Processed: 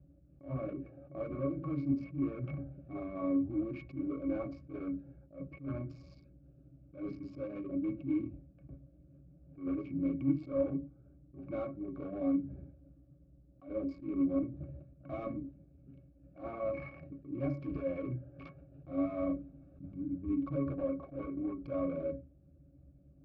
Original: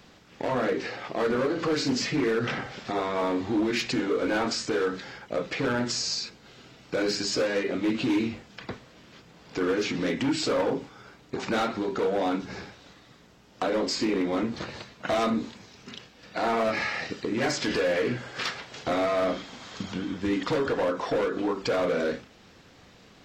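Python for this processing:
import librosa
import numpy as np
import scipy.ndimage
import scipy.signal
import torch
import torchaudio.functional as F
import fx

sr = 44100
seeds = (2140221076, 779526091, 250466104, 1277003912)

y = fx.wiener(x, sr, points=41)
y = fx.lowpass(y, sr, hz=3400.0, slope=6)
y = fx.low_shelf(y, sr, hz=110.0, db=9.0)
y = fx.octave_resonator(y, sr, note='C#', decay_s=0.11)
y = fx.attack_slew(y, sr, db_per_s=180.0)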